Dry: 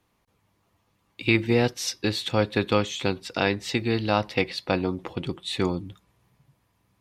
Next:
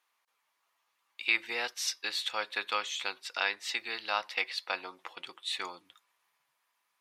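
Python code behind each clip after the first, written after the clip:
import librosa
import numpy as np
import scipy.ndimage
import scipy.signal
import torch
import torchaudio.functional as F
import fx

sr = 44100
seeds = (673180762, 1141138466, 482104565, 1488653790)

y = scipy.signal.sosfilt(scipy.signal.cheby1(2, 1.0, 1200.0, 'highpass', fs=sr, output='sos'), x)
y = y * 10.0 ** (-2.5 / 20.0)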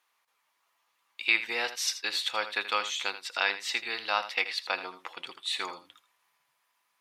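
y = x + 10.0 ** (-12.5 / 20.0) * np.pad(x, (int(81 * sr / 1000.0), 0))[:len(x)]
y = y * 10.0 ** (3.0 / 20.0)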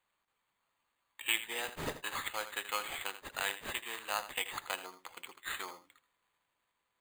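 y = np.repeat(x[::8], 8)[:len(x)]
y = y * 10.0 ** (-7.5 / 20.0)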